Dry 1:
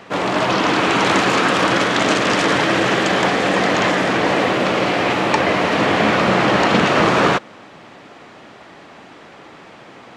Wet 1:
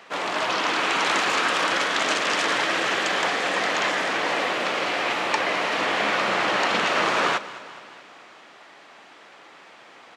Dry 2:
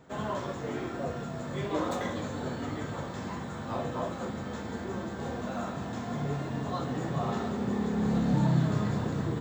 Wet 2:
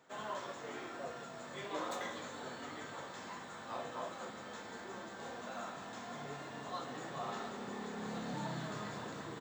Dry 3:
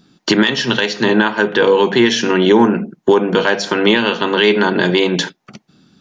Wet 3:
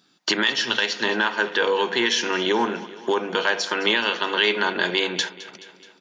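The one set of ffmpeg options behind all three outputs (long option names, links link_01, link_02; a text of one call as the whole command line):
ffmpeg -i in.wav -filter_complex "[0:a]highpass=frequency=950:poles=1,asplit=2[link_01][link_02];[link_02]aecho=0:1:213|426|639|852|1065|1278:0.141|0.0833|0.0492|0.029|0.0171|0.0101[link_03];[link_01][link_03]amix=inputs=2:normalize=0,volume=-3.5dB" out.wav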